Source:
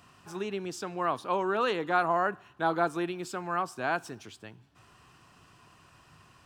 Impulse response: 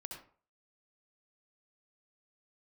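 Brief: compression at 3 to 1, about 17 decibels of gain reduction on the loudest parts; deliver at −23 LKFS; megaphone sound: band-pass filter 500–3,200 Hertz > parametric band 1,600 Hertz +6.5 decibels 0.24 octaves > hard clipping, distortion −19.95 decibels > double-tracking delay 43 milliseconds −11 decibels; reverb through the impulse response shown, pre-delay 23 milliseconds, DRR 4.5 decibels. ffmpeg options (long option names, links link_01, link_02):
-filter_complex "[0:a]acompressor=threshold=-46dB:ratio=3,asplit=2[link_01][link_02];[1:a]atrim=start_sample=2205,adelay=23[link_03];[link_02][link_03]afir=irnorm=-1:irlink=0,volume=-1dB[link_04];[link_01][link_04]amix=inputs=2:normalize=0,highpass=500,lowpass=3200,equalizer=frequency=1600:width_type=o:width=0.24:gain=6.5,asoftclip=type=hard:threshold=-35dB,asplit=2[link_05][link_06];[link_06]adelay=43,volume=-11dB[link_07];[link_05][link_07]amix=inputs=2:normalize=0,volume=22dB"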